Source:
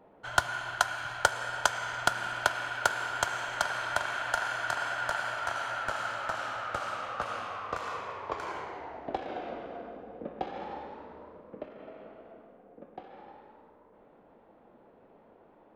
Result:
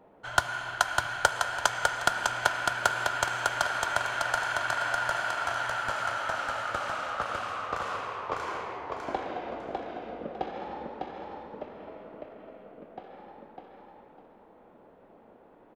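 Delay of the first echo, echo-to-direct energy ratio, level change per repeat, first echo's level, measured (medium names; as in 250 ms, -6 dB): 602 ms, -3.0 dB, -12.0 dB, -3.5 dB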